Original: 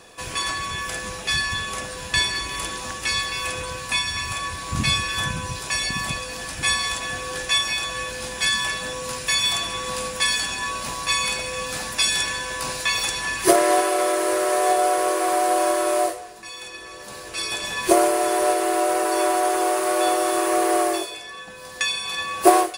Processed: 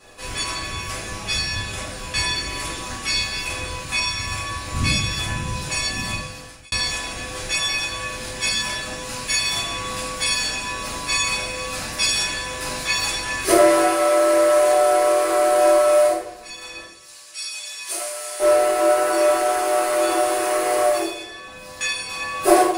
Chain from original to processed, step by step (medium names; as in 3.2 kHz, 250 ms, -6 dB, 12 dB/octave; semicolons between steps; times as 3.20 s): 16.83–18.40 s: band-pass filter 7.9 kHz, Q 0.65; simulated room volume 74 m³, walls mixed, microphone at 2.3 m; 6.05–6.72 s: fade out; trim -8.5 dB